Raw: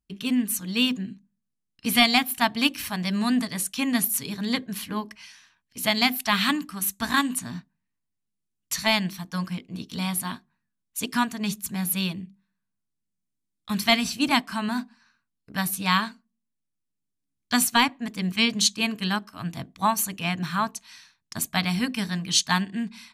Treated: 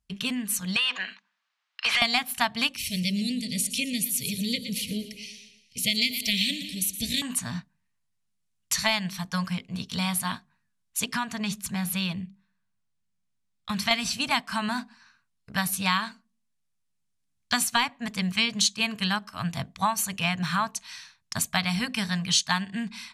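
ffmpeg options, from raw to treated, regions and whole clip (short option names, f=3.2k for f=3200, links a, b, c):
-filter_complex "[0:a]asettb=1/sr,asplit=3[a][b][c];[a]atrim=end=0.764[d];[b]atrim=start=0.76:end=2.02,asetpts=PTS-STARTPTS,afade=t=in:d=0.004:c=qsin,afade=t=out:st=1.256:d=0.004:c=qsin,asuperpass=centerf=2100:order=4:qfactor=0.54,acompressor=threshold=-34dB:ratio=16:attack=3.2:release=140:knee=1:detection=peak,asplit=2[e][f];[f]highpass=f=720:p=1,volume=26dB,asoftclip=type=tanh:threshold=-11dB[g];[e][g]amix=inputs=2:normalize=0,lowpass=f=2k:p=1,volume=-6dB[h];[c]atrim=start=2.016[i];[d][h]acrossfade=d=0.004:c1=hsin:c2=qsin[j];[j][i]acrossfade=d=0.004:c1=qsin:c2=hsin,asettb=1/sr,asplit=3[k][l][m];[k]atrim=end=2.764[n];[l]atrim=start=2.76:end=7.22,asetpts=PTS-STARTPTS,afade=t=in:d=0.004:c=qsin,afade=t=out:st=4.456:d=0.004:c=qsin,asuperstop=centerf=1100:order=12:qfactor=0.67,aecho=1:1:117|234|351|468|585:0.237|0.121|0.0617|0.0315|0.016,atrim=end_sample=196686[o];[m]atrim=start=7.216[p];[n][o]acrossfade=d=0.004:c1=hsin:c2=qsin[q];[q][p]acrossfade=d=0.004:c1=qsin:c2=hsin,asettb=1/sr,asplit=3[r][s][t];[r]atrim=end=11.044[u];[s]atrim=start=11.04:end=13.91,asetpts=PTS-STARTPTS,afade=t=in:d=0.004:c=qsin,afade=t=out:st=2.866:d=0.004:c=qsin,highshelf=f=6.8k:g=-7.5,acompressor=threshold=-27dB:ratio=2:attack=3.2:release=140:knee=1:detection=peak[v];[t]atrim=start=13.906[w];[u][v]acrossfade=d=0.004:c1=hsin:c2=qsin[x];[x][w]acrossfade=d=0.004:c1=qsin:c2=hsin,acompressor=threshold=-27dB:ratio=3,lowpass=11k,equalizer=f=320:w=1.7:g=-14,volume=5.5dB"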